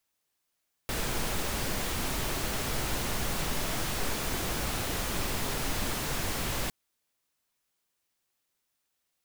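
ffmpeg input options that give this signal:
ffmpeg -f lavfi -i "anoisesrc=color=pink:amplitude=0.145:duration=5.81:sample_rate=44100:seed=1" out.wav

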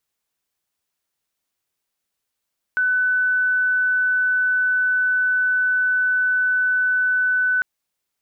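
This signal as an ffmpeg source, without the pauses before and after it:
ffmpeg -f lavfi -i "aevalsrc='0.158*sin(2*PI*1500*t)':duration=4.85:sample_rate=44100" out.wav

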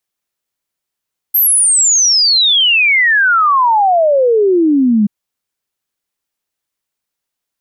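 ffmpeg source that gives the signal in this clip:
ffmpeg -f lavfi -i "aevalsrc='0.422*clip(min(t,3.73-t)/0.01,0,1)*sin(2*PI*13000*3.73/log(200/13000)*(exp(log(200/13000)*t/3.73)-1))':duration=3.73:sample_rate=44100" out.wav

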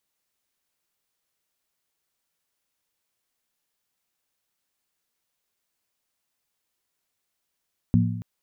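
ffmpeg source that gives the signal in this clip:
ffmpeg -f lavfi -i "aevalsrc='0.141*pow(10,-3*t/0.96)*sin(2*PI*110*t)+0.133*pow(10,-3*t/0.76)*sin(2*PI*175.3*t)+0.126*pow(10,-3*t/0.657)*sin(2*PI*235*t)':duration=0.28:sample_rate=44100" out.wav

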